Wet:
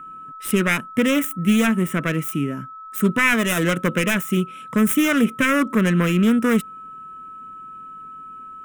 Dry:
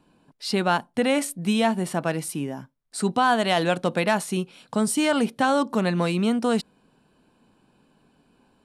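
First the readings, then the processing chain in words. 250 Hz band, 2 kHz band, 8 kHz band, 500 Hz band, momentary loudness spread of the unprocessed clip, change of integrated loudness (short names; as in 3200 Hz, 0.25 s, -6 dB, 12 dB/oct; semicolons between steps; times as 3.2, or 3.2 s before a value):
+6.0 dB, +7.0 dB, +2.5 dB, 0.0 dB, 9 LU, +4.0 dB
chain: self-modulated delay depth 0.28 ms; whine 1300 Hz -40 dBFS; fixed phaser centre 1900 Hz, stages 4; gain +7.5 dB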